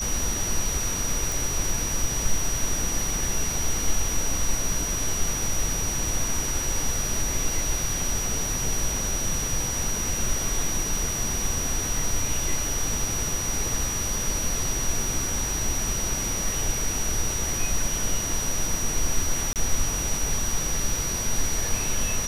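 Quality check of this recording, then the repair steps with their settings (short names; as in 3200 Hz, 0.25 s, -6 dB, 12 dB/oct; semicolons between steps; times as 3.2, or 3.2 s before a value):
tone 5800 Hz -28 dBFS
1.32 pop
19.53–19.56 gap 28 ms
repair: de-click; notch 5800 Hz, Q 30; interpolate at 19.53, 28 ms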